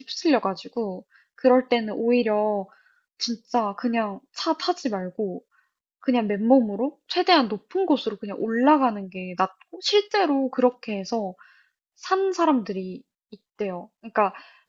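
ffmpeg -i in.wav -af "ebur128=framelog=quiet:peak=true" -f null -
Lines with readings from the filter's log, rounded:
Integrated loudness:
  I:         -24.1 LUFS
  Threshold: -34.7 LUFS
Loudness range:
  LRA:         5.3 LU
  Threshold: -44.6 LUFS
  LRA low:   -27.7 LUFS
  LRA high:  -22.5 LUFS
True peak:
  Peak:       -3.9 dBFS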